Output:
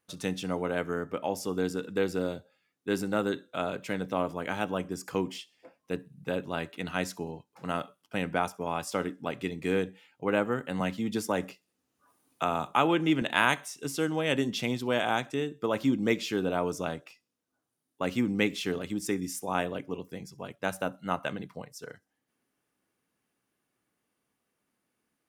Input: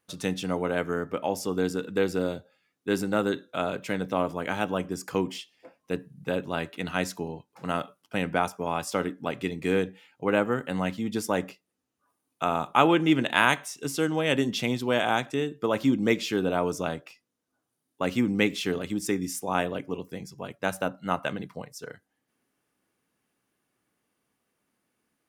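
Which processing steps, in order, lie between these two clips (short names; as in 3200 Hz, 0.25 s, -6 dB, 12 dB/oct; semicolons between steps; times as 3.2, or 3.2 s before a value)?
thin delay 65 ms, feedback 44%, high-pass 4900 Hz, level -22 dB; 10.8–13.22 three-band squash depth 40%; gain -3 dB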